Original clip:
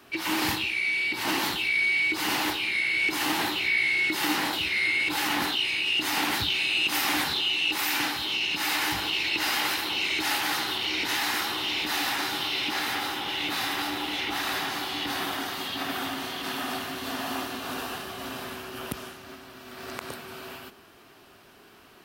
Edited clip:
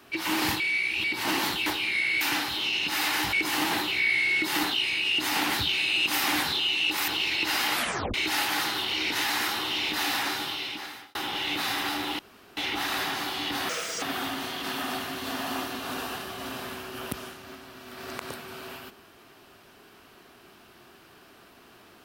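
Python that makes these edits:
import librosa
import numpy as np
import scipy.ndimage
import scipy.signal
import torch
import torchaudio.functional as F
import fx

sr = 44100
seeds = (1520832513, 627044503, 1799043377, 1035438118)

y = fx.edit(x, sr, fx.reverse_span(start_s=0.6, length_s=0.44),
    fx.cut(start_s=1.66, length_s=0.8),
    fx.cut(start_s=4.31, length_s=1.13),
    fx.move(start_s=7.89, length_s=1.12, to_s=3.01),
    fx.tape_stop(start_s=9.67, length_s=0.4),
    fx.fade_out_span(start_s=12.18, length_s=0.9),
    fx.insert_room_tone(at_s=14.12, length_s=0.38),
    fx.speed_span(start_s=15.24, length_s=0.58, speed=1.75), tone=tone)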